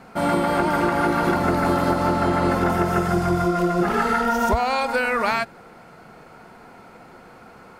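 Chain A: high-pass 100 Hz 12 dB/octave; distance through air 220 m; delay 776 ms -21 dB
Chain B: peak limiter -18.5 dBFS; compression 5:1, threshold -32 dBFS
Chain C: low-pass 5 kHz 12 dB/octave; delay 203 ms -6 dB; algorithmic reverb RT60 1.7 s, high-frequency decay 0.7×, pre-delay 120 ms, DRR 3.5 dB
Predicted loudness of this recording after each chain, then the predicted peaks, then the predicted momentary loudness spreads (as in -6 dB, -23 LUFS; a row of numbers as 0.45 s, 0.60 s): -22.0 LUFS, -36.0 LUFS, -18.0 LUFS; -8.5 dBFS, -21.5 dBFS, -5.0 dBFS; 2 LU, 12 LU, 7 LU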